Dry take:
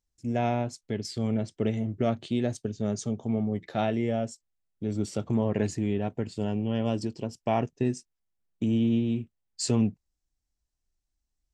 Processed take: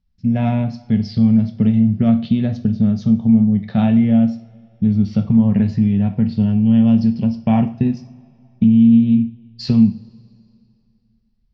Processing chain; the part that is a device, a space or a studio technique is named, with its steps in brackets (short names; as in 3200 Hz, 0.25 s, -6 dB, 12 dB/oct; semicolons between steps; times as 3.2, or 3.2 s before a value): steep low-pass 5200 Hz 48 dB/oct; jukebox (LPF 6700 Hz; resonant low shelf 260 Hz +9.5 dB, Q 3; compressor, threshold -17 dBFS, peak gain reduction 8.5 dB); two-slope reverb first 0.4 s, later 2.6 s, from -22 dB, DRR 6.5 dB; gain +5 dB